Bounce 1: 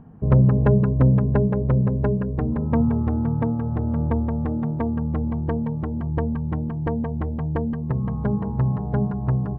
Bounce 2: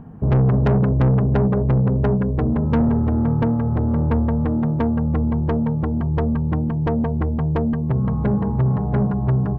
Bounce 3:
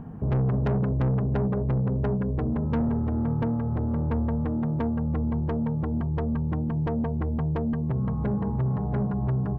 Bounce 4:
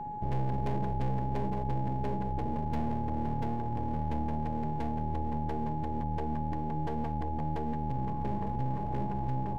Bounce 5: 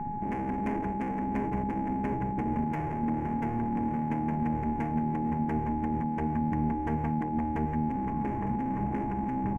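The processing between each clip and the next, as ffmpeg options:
ffmpeg -i in.wav -af "asoftclip=type=tanh:threshold=-19.5dB,volume=6.5dB" out.wav
ffmpeg -i in.wav -af "alimiter=limit=-21dB:level=0:latency=1:release=476" out.wav
ffmpeg -i in.wav -af "aeval=exprs='max(val(0),0)':channel_layout=same,equalizer=frequency=1300:width=4.7:gain=-10,aeval=exprs='val(0)+0.0224*sin(2*PI*840*n/s)':channel_layout=same,volume=-3.5dB" out.wav
ffmpeg -i in.wav -af "afftfilt=real='re*lt(hypot(re,im),0.141)':imag='im*lt(hypot(re,im),0.141)':win_size=1024:overlap=0.75,firequalizer=gain_entry='entry(140,0);entry(220,5);entry(510,-9);entry(760,-4);entry(2200,4);entry(3800,-23);entry(6200,-6)':delay=0.05:min_phase=1,volume=6.5dB" out.wav

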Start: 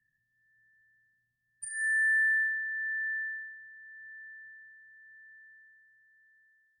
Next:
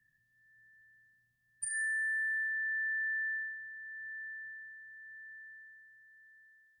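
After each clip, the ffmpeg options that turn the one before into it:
ffmpeg -i in.wav -af "acompressor=threshold=-37dB:ratio=8,volume=4dB" out.wav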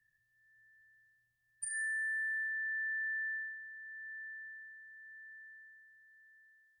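ffmpeg -i in.wav -af "equalizer=frequency=210:width_type=o:width=1:gain=-12,volume=-2.5dB" out.wav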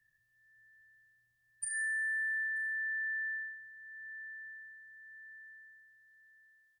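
ffmpeg -i in.wav -filter_complex "[0:a]asplit=2[link_01][link_02];[link_02]adelay=932.9,volume=-15dB,highshelf=frequency=4000:gain=-21[link_03];[link_01][link_03]amix=inputs=2:normalize=0,volume=2dB" out.wav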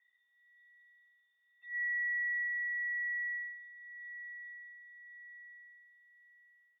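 ffmpeg -i in.wav -af "lowpass=frequency=3100:width_type=q:width=0.5098,lowpass=frequency=3100:width_type=q:width=0.6013,lowpass=frequency=3100:width_type=q:width=0.9,lowpass=frequency=3100:width_type=q:width=2.563,afreqshift=-3700" out.wav

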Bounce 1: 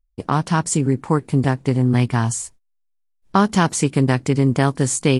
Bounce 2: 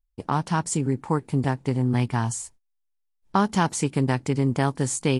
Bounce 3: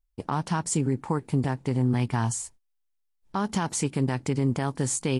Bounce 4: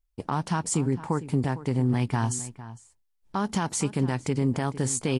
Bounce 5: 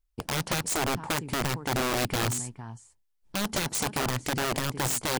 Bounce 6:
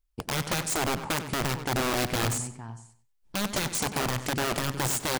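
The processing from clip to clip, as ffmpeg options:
ffmpeg -i in.wav -af "equalizer=frequency=870:width=7.4:gain=6,volume=-6dB" out.wav
ffmpeg -i in.wav -af "alimiter=limit=-16dB:level=0:latency=1:release=66" out.wav
ffmpeg -i in.wav -filter_complex "[0:a]asplit=2[link_01][link_02];[link_02]adelay=454.8,volume=-15dB,highshelf=frequency=4000:gain=-10.2[link_03];[link_01][link_03]amix=inputs=2:normalize=0" out.wav
ffmpeg -i in.wav -af "aeval=exprs='(mod(11.9*val(0)+1,2)-1)/11.9':channel_layout=same" out.wav
ffmpeg -i in.wav -filter_complex "[0:a]asplit=2[link_01][link_02];[link_02]adelay=95,lowpass=frequency=4300:poles=1,volume=-11dB,asplit=2[link_03][link_04];[link_04]adelay=95,lowpass=frequency=4300:poles=1,volume=0.3,asplit=2[link_05][link_06];[link_06]adelay=95,lowpass=frequency=4300:poles=1,volume=0.3[link_07];[link_01][link_03][link_05][link_07]amix=inputs=4:normalize=0" out.wav

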